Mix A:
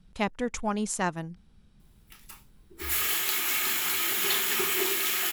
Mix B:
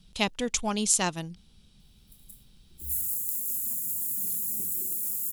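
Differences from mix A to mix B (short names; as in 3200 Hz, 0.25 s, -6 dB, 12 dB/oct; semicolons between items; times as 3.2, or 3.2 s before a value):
speech: add resonant high shelf 2400 Hz +9.5 dB, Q 1.5; background: add elliptic band-stop 210–8400 Hz, stop band 80 dB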